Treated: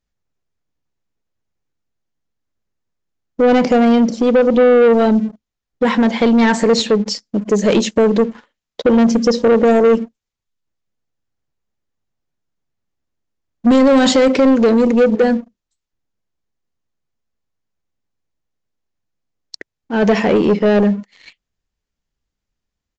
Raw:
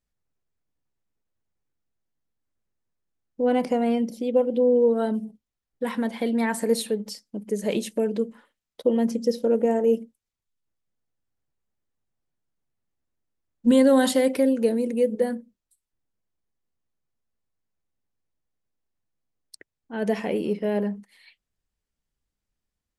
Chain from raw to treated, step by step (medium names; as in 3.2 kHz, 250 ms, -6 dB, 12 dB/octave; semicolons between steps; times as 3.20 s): peak limiter -14 dBFS, peak gain reduction 5.5 dB; waveshaping leveller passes 2; resampled via 16 kHz; trim +8 dB